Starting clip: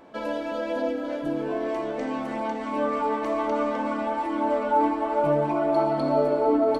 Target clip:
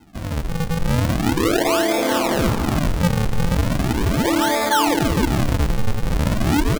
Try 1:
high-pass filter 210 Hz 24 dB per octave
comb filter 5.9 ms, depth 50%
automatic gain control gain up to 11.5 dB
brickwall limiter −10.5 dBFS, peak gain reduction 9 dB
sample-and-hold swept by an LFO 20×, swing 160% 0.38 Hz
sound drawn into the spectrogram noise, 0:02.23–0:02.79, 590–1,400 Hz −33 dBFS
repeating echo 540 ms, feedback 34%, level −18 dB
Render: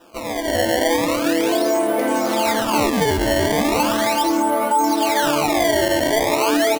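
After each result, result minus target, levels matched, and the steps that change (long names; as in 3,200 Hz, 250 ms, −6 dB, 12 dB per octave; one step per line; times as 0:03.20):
echo 250 ms late; sample-and-hold swept by an LFO: distortion −15 dB
change: repeating echo 290 ms, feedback 34%, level −18 dB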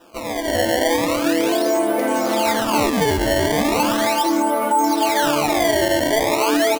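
sample-and-hold swept by an LFO: distortion −15 dB
change: sample-and-hold swept by an LFO 75×, swing 160% 0.38 Hz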